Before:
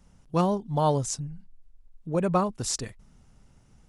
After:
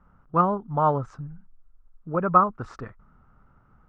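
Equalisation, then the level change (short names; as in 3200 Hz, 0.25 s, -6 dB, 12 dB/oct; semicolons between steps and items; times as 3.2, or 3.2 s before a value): synth low-pass 1300 Hz, resonance Q 6.4; -1.5 dB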